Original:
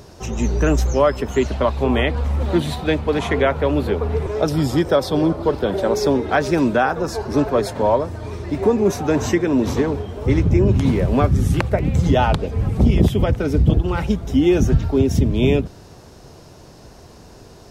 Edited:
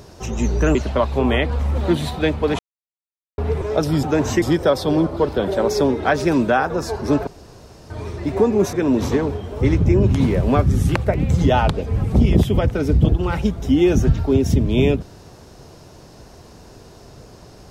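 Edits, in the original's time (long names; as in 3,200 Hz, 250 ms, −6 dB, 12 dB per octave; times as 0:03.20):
0:00.75–0:01.40: remove
0:03.24–0:04.03: silence
0:07.53–0:08.16: fill with room tone
0:08.99–0:09.38: move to 0:04.68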